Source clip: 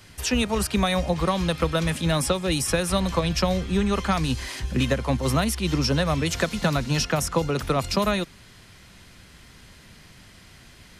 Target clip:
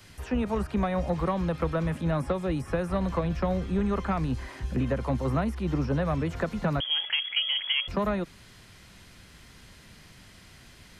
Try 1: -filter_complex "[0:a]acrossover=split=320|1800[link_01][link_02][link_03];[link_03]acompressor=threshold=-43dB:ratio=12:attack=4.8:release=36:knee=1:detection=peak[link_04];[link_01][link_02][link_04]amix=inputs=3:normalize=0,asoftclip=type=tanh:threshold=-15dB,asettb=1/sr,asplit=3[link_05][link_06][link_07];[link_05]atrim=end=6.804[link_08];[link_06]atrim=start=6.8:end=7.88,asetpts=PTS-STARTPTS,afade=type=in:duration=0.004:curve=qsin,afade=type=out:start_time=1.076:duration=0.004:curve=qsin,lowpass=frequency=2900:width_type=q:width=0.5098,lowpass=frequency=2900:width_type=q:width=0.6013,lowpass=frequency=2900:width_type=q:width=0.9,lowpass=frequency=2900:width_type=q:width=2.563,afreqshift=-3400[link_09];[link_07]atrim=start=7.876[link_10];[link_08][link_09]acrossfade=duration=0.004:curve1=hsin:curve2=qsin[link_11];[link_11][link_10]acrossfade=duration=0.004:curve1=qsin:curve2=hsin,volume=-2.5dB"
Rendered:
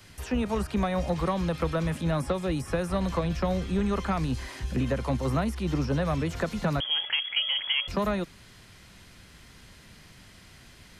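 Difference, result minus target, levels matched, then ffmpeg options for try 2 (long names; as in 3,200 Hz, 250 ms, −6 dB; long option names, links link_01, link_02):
downward compressor: peak gain reduction −8 dB
-filter_complex "[0:a]acrossover=split=320|1800[link_01][link_02][link_03];[link_03]acompressor=threshold=-51.5dB:ratio=12:attack=4.8:release=36:knee=1:detection=peak[link_04];[link_01][link_02][link_04]amix=inputs=3:normalize=0,asoftclip=type=tanh:threshold=-15dB,asettb=1/sr,asplit=3[link_05][link_06][link_07];[link_05]atrim=end=6.804[link_08];[link_06]atrim=start=6.8:end=7.88,asetpts=PTS-STARTPTS,afade=type=in:duration=0.004:curve=qsin,afade=type=out:start_time=1.076:duration=0.004:curve=qsin,lowpass=frequency=2900:width_type=q:width=0.5098,lowpass=frequency=2900:width_type=q:width=0.6013,lowpass=frequency=2900:width_type=q:width=0.9,lowpass=frequency=2900:width_type=q:width=2.563,afreqshift=-3400[link_09];[link_07]atrim=start=7.876[link_10];[link_08][link_09]acrossfade=duration=0.004:curve1=hsin:curve2=qsin[link_11];[link_11][link_10]acrossfade=duration=0.004:curve1=qsin:curve2=hsin,volume=-2.5dB"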